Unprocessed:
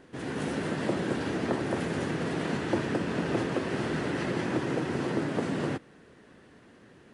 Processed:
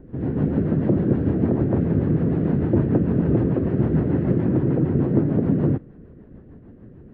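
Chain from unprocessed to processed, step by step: tilt EQ -4.5 dB/octave; rotary cabinet horn 6.7 Hz; tape spacing loss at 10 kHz 35 dB; trim +4 dB

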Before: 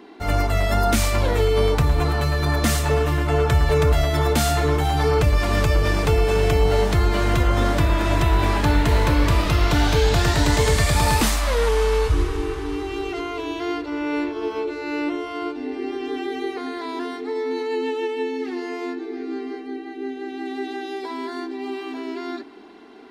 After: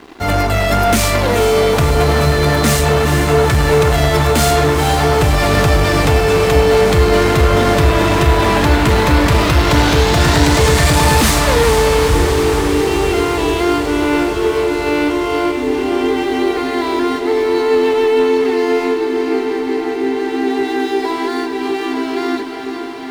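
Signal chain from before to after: high-pass 72 Hz 12 dB/octave; waveshaping leveller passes 3; small samples zeroed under -46 dBFS; on a send: echo that smears into a reverb 456 ms, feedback 77%, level -8 dB; on the sum: trim -1 dB

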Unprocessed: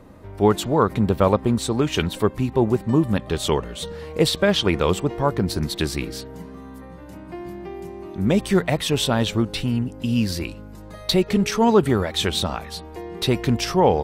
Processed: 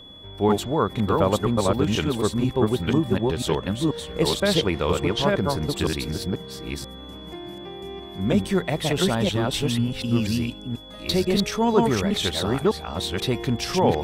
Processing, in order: chunks repeated in reverse 489 ms, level -1 dB; whistle 3.4 kHz -39 dBFS; trim -4 dB

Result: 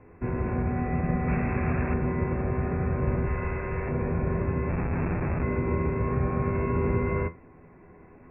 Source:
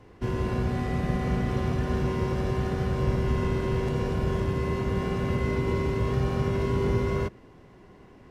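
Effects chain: 3.27–3.89 s: graphic EQ 125/250/2000 Hz -4/-9/+4 dB; 4.69–5.43 s: Schmitt trigger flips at -27 dBFS; feedback comb 83 Hz, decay 0.21 s, harmonics all, mix 70%; 1.28–1.94 s: word length cut 6-bit, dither none; brick-wall FIR low-pass 2.7 kHz; trim +5 dB

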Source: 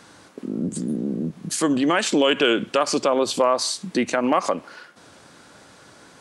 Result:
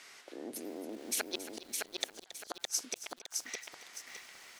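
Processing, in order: low-pass 2.9 kHz 12 dB/octave; inverted gate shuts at -13 dBFS, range -41 dB; differentiator; speed mistake 33 rpm record played at 45 rpm; bass shelf 230 Hz +3.5 dB; on a send: delay 275 ms -14.5 dB; on the sum: bit-crushed delay 612 ms, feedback 35%, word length 11-bit, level -3 dB; trim +10 dB

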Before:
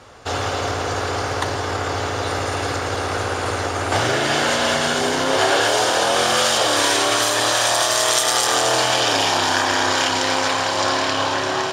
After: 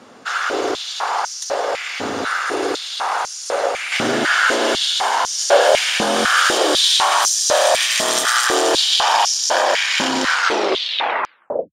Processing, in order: tape stop on the ending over 1.41 s; step-sequenced high-pass 4 Hz 220–5800 Hz; trim -1 dB

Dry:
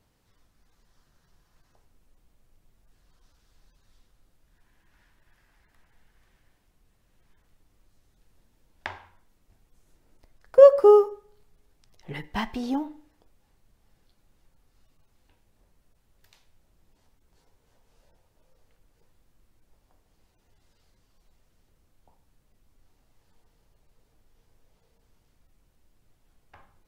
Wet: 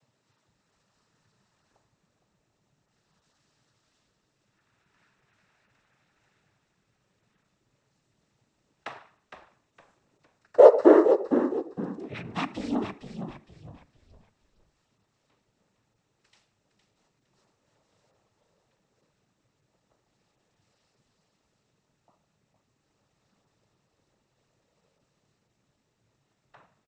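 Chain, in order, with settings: noise-vocoded speech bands 12; frequency-shifting echo 461 ms, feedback 33%, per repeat -67 Hz, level -8.5 dB; trim -1 dB

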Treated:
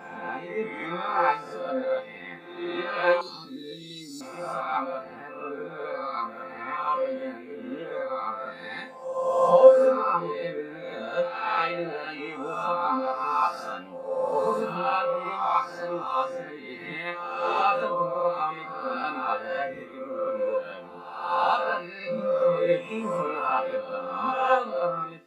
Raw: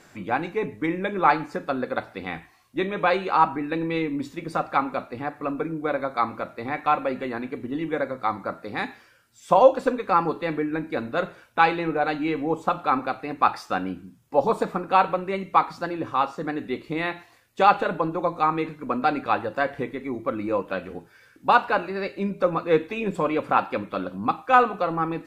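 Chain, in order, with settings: reverse spectral sustain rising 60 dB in 1.68 s; high-pass 69 Hz; chord resonator F3 major, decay 0.27 s; spectral noise reduction 6 dB; 3.21–4.21 s: FFT filter 410 Hz 0 dB, 660 Hz -25 dB, 2.7 kHz -15 dB, 4.2 kHz +12 dB; trim +7.5 dB

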